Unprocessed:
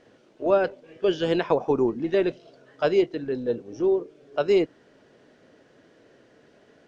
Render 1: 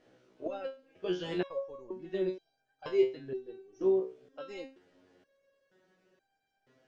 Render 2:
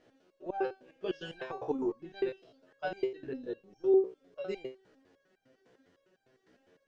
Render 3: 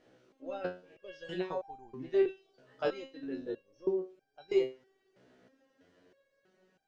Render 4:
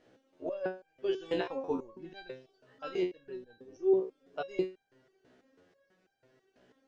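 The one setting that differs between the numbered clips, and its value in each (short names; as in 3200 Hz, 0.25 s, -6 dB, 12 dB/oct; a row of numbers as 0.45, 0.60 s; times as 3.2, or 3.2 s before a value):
stepped resonator, rate: 2.1, 9.9, 3.1, 6.1 Hz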